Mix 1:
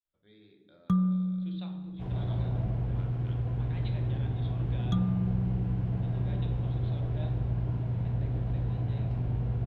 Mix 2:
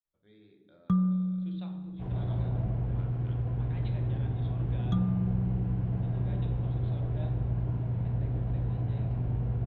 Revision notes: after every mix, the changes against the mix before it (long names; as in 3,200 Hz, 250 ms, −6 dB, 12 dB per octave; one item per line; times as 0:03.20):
master: add high-shelf EQ 3,800 Hz −11 dB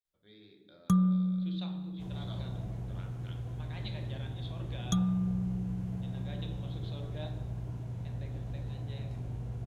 second sound −8.5 dB
master: remove high-frequency loss of the air 410 metres